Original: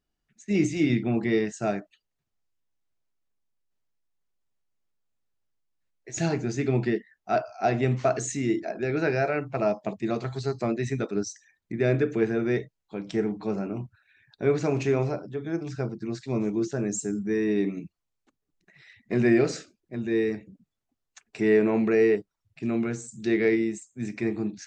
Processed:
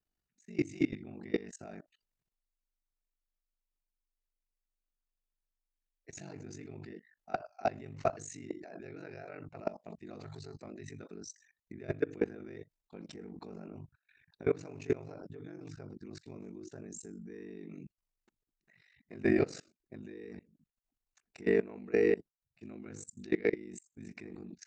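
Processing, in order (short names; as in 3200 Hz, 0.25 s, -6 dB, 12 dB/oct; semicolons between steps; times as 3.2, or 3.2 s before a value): level quantiser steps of 21 dB; ring modulator 24 Hz; notch 3300 Hz, Q 12; gain -1.5 dB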